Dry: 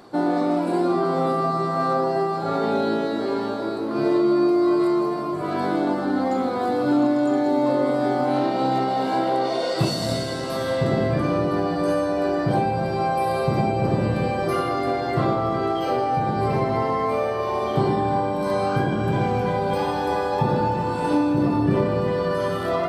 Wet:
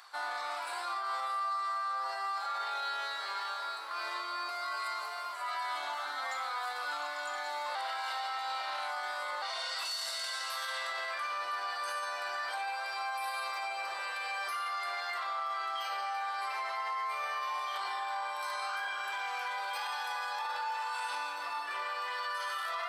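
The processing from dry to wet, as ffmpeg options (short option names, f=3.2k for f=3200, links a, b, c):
-filter_complex "[0:a]asettb=1/sr,asplit=3[a][b][c];[a]atrim=end=4.484[d];[b]atrim=start=4.48:end=6.4,asetpts=PTS-STARTPTS,afade=t=in:d=0.004:c=qsin,afade=t=out:st=1.916:d=0.004:c=qsin,aecho=1:1:7.1:0.65,atrim=end_sample=84672[e];[c]atrim=start=6.396[f];[d][e]acrossfade=d=0.004:c1=hsin:c2=qsin[g];[g][f]acrossfade=d=0.004:c1=qsin:c2=hsin,asplit=3[h][i][j];[h]atrim=end=7.752[k];[i]atrim=start=7.748:end=9.422,asetpts=PTS-STARTPTS,areverse[l];[j]atrim=start=9.418[m];[k][l]acrossfade=d=0.004:c1=hsin:c2=hsin[n];[n][m]acrossfade=d=0.004:c1=hsin:c2=hsin,highpass=f=1.1k:w=0.5412,highpass=f=1.1k:w=1.3066,acontrast=81,alimiter=limit=-21.5dB:level=0:latency=1:release=12,volume=-7dB"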